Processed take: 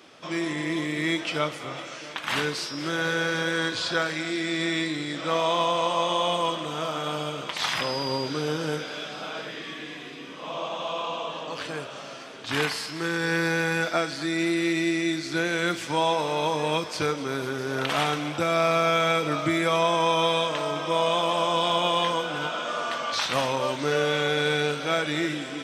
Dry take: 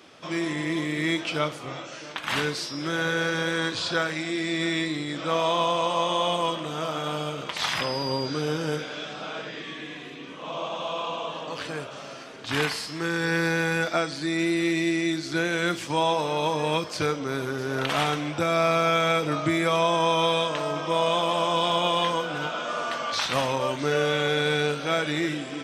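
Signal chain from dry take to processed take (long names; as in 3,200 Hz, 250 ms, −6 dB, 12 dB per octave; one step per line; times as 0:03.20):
low-shelf EQ 100 Hz −6 dB
on a send: feedback echo with a high-pass in the loop 250 ms, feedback 84%, high-pass 940 Hz, level −15 dB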